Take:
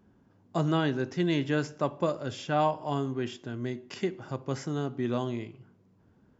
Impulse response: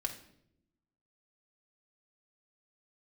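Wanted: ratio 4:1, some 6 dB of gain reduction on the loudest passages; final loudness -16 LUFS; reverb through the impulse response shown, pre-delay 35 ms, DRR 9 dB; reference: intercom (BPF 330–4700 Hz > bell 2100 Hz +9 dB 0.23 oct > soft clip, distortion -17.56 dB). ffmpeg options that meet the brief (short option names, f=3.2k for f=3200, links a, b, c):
-filter_complex "[0:a]acompressor=threshold=-29dB:ratio=4,asplit=2[a][b];[1:a]atrim=start_sample=2205,adelay=35[c];[b][c]afir=irnorm=-1:irlink=0,volume=-10dB[d];[a][d]amix=inputs=2:normalize=0,highpass=330,lowpass=4.7k,equalizer=f=2.1k:t=o:w=0.23:g=9,asoftclip=threshold=-26.5dB,volume=22.5dB"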